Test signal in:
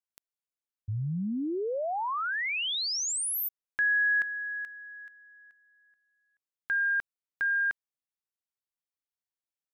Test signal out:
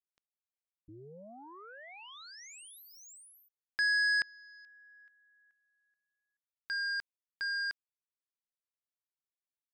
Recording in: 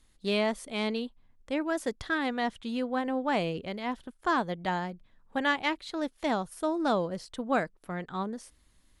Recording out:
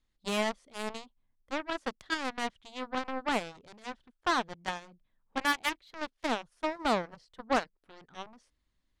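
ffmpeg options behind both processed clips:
-af "lowpass=5.6k,aeval=exprs='0.188*(cos(1*acos(clip(val(0)/0.188,-1,1)))-cos(1*PI/2))+0.0335*(cos(7*acos(clip(val(0)/0.188,-1,1)))-cos(7*PI/2))':c=same,volume=-1dB"

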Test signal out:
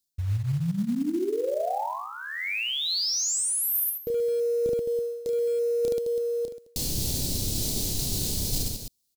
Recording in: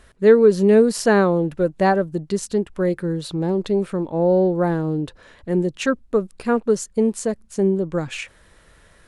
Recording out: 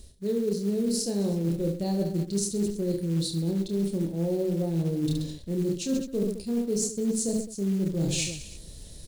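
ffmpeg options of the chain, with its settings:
-af "firequalizer=gain_entry='entry(170,0);entry(1300,-30);entry(2400,-16);entry(4100,2)':delay=0.05:min_phase=1,aecho=1:1:30|72|130.8|213.1|328.4:0.631|0.398|0.251|0.158|0.1,acrusher=bits=6:mode=log:mix=0:aa=0.000001,areverse,acompressor=threshold=-32dB:ratio=16,areverse,volume=8dB"

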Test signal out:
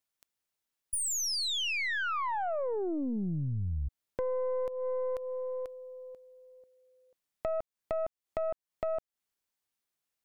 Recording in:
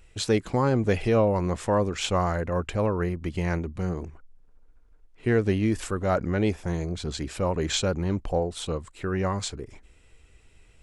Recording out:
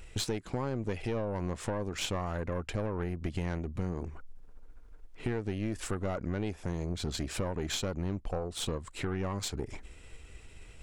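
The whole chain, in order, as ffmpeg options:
-af "acompressor=threshold=-36dB:ratio=12,aeval=exprs='(tanh(44.7*val(0)+0.6)-tanh(0.6))/44.7':c=same,volume=8.5dB"

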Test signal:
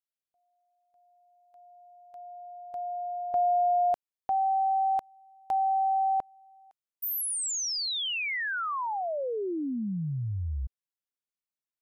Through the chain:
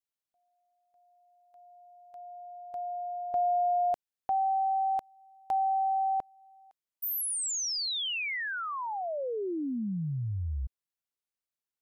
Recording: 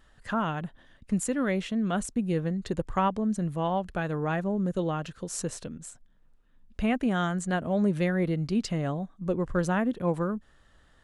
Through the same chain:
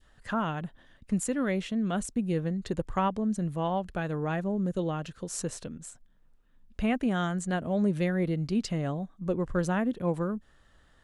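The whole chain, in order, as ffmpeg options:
-af "adynamicequalizer=threshold=0.00794:dfrequency=1200:dqfactor=0.81:tfrequency=1200:tqfactor=0.81:attack=5:release=100:ratio=0.375:range=1.5:mode=cutabove:tftype=bell,volume=-1dB"

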